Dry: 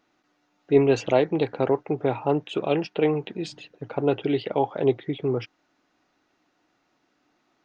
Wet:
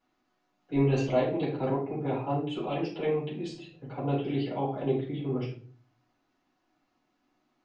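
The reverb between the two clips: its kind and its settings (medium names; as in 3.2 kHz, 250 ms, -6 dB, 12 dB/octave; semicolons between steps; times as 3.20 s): simulated room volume 330 m³, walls furnished, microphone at 7.6 m; trim -17.5 dB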